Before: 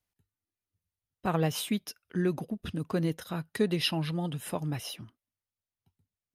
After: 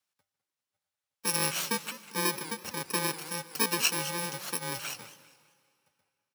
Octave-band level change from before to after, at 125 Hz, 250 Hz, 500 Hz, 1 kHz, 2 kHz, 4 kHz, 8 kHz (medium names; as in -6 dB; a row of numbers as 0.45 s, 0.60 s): -10.5 dB, -8.0 dB, -5.0 dB, +3.0 dB, +6.5 dB, +3.0 dB, +12.0 dB